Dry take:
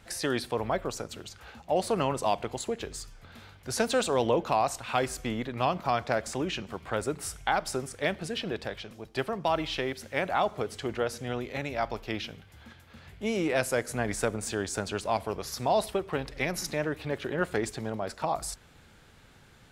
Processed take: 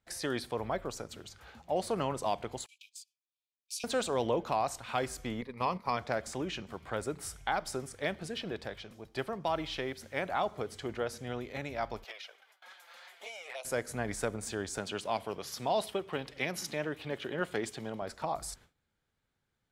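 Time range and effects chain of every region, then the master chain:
2.66–3.84 s: gate -40 dBFS, range -17 dB + Chebyshev high-pass 2.3 kHz, order 10
5.41–5.97 s: gate -35 dBFS, range -8 dB + rippled EQ curve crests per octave 0.89, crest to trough 10 dB
12.04–13.65 s: high-pass 610 Hz 24 dB/octave + touch-sensitive flanger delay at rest 6.8 ms, full sweep at -28 dBFS + three bands compressed up and down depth 70%
14.78–18.02 s: high-pass 120 Hz + peaking EQ 3 kHz +7 dB 0.5 oct
whole clip: band-stop 2.7 kHz, Q 20; gate with hold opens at -42 dBFS; trim -5 dB

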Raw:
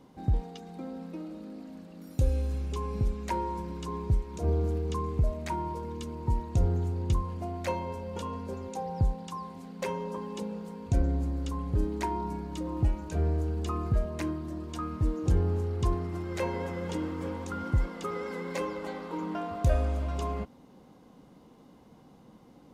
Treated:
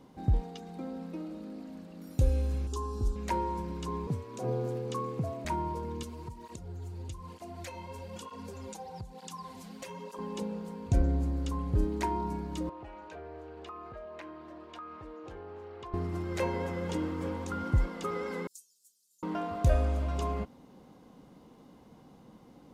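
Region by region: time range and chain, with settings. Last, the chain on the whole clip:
2.67–3.16 s: peaking EQ 6.7 kHz +6 dB 1.3 oct + static phaser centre 580 Hz, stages 6
4.07–5.45 s: high-pass 200 Hz 6 dB/octave + frequency shift +46 Hz
6.03–10.19 s: treble shelf 2 kHz +11.5 dB + compression 8:1, threshold -36 dBFS + cancelling through-zero flanger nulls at 1.1 Hz, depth 7.9 ms
12.69–15.94 s: three-band isolator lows -22 dB, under 420 Hz, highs -20 dB, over 3.8 kHz + compression 3:1, threshold -42 dBFS
18.47–19.23 s: inverse Chebyshev high-pass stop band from 2.2 kHz, stop band 60 dB + comb 5 ms, depth 77%
whole clip: none

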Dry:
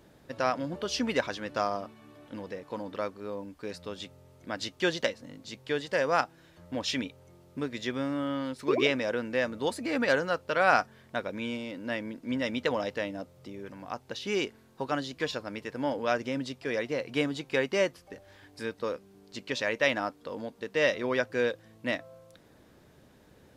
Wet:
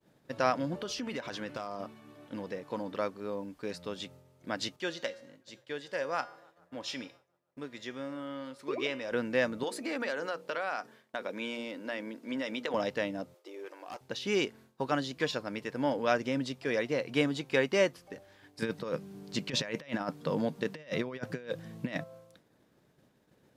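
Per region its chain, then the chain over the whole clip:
0.82–1.80 s: de-hum 115.4 Hz, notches 27 + compression 10:1, threshold -33 dBFS + hard clipper -28.5 dBFS
4.76–9.12 s: bass shelf 150 Hz -10 dB + feedback comb 110 Hz, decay 0.64 s, harmonics odd + feedback echo behind a band-pass 144 ms, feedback 84%, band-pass 820 Hz, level -24 dB
9.63–12.74 s: high-pass 270 Hz + hum notches 60/120/180/240/300/360/420/480 Hz + compression, threshold -30 dBFS
13.34–14.01 s: brick-wall FIR high-pass 300 Hz + hard clipper -37.5 dBFS
18.62–22.04 s: peaking EQ 160 Hz +14 dB 0.43 oct + compressor with a negative ratio -34 dBFS, ratio -0.5
whole clip: resonant low shelf 100 Hz -6 dB, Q 1.5; expander -50 dBFS

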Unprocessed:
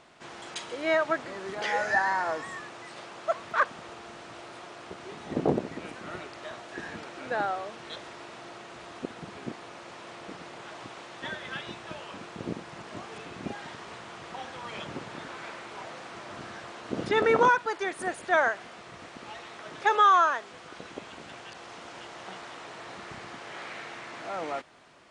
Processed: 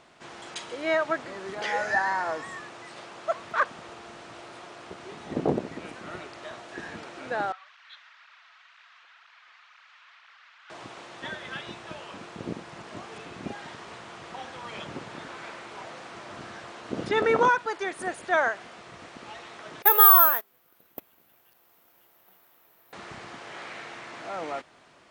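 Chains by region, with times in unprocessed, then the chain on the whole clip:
7.52–10.70 s: high-pass 1.3 kHz 24 dB/octave + distance through air 190 m + cancelling through-zero flanger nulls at 2 Hz, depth 5.4 ms
19.82–22.93 s: gate -37 dBFS, range -22 dB + careless resampling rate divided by 3×, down none, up zero stuff
whole clip: none

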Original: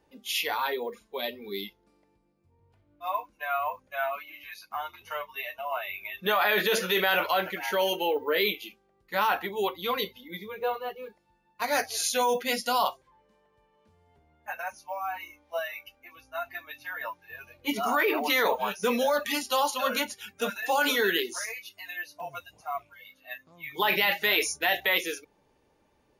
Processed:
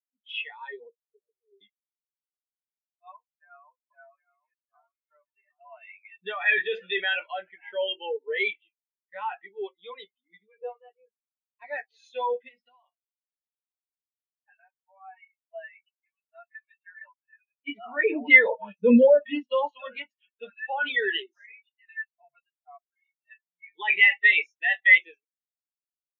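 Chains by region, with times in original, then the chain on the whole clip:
0.91–1.61 s: comb filter that takes the minimum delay 4.7 ms + Butterworth band-pass 440 Hz, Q 5
3.14–5.61 s: low-pass 1.3 kHz + peaking EQ 740 Hz -6.5 dB 0.92 oct + delay 764 ms -8.5 dB
12.48–14.97 s: compression 16:1, threshold -32 dBFS + delay 966 ms -22 dB
17.96–19.72 s: bass shelf 480 Hz +10.5 dB + comb of notches 390 Hz
whole clip: low-pass 6.8 kHz; high-order bell 2.5 kHz +8 dB 1.3 oct; spectral contrast expander 2.5:1

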